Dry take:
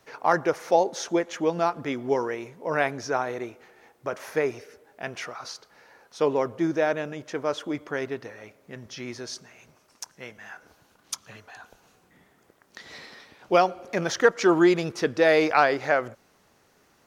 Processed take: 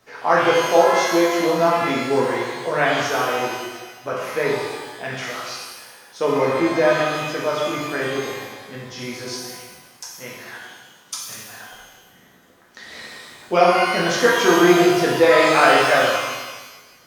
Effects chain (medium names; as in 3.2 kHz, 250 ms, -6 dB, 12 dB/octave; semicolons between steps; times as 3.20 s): chunks repeated in reverse 108 ms, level -11 dB; 10.48–11.46 s: high-pass 120 Hz 24 dB/octave; pitch-shifted reverb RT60 1.2 s, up +12 st, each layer -8 dB, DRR -5.5 dB